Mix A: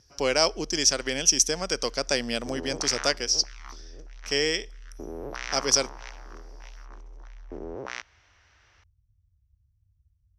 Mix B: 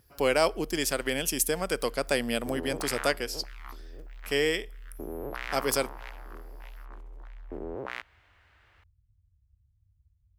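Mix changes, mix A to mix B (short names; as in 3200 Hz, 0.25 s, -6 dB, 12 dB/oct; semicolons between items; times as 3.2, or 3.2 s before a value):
speech: send +8.0 dB; master: remove synth low-pass 5800 Hz, resonance Q 11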